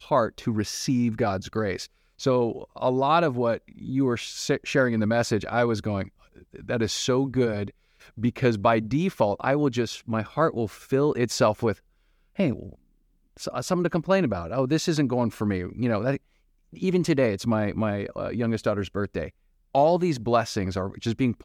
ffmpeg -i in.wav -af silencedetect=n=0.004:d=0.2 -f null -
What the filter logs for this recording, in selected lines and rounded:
silence_start: 1.86
silence_end: 2.19 | silence_duration: 0.33
silence_start: 7.71
silence_end: 8.00 | silence_duration: 0.30
silence_start: 11.79
silence_end: 12.35 | silence_duration: 0.57
silence_start: 12.75
silence_end: 13.37 | silence_duration: 0.62
silence_start: 16.17
silence_end: 16.73 | silence_duration: 0.55
silence_start: 19.30
silence_end: 19.75 | silence_duration: 0.45